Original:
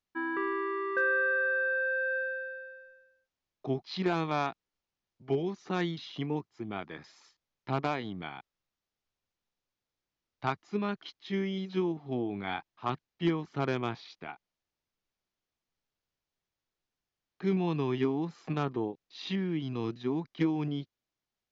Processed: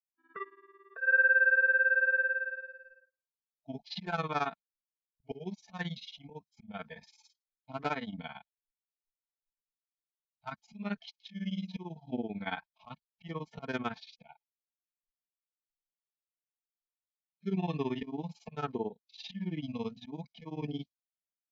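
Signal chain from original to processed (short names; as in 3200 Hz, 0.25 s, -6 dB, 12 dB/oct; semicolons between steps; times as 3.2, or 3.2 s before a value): auto swell 0.166 s; dynamic EQ 1500 Hz, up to +5 dB, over -45 dBFS, Q 2.1; spectral noise reduction 24 dB; comb 4.5 ms, depth 54%; grains 69 ms, grains 18/s, spray 13 ms, pitch spread up and down by 0 st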